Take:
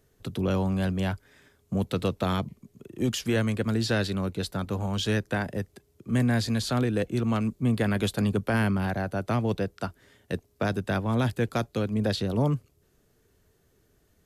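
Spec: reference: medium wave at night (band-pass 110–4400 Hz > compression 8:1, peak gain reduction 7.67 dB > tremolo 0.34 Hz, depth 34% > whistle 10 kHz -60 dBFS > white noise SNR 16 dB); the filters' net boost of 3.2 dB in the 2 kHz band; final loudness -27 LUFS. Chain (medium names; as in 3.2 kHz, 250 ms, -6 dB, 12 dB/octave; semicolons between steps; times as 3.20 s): band-pass 110–4400 Hz; peaking EQ 2 kHz +4.5 dB; compression 8:1, threshold -27 dBFS; tremolo 0.34 Hz, depth 34%; whistle 10 kHz -60 dBFS; white noise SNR 16 dB; trim +7 dB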